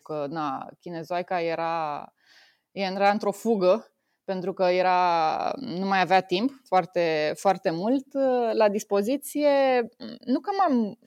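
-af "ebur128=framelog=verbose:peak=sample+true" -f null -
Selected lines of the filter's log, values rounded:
Integrated loudness:
  I:         -24.9 LUFS
  Threshold: -35.4 LUFS
Loudness range:
  LRA:         3.2 LU
  Threshold: -45.1 LUFS
  LRA low:   -27.4 LUFS
  LRA high:  -24.1 LUFS
Sample peak:
  Peak:      -10.2 dBFS
True peak:
  Peak:      -10.1 dBFS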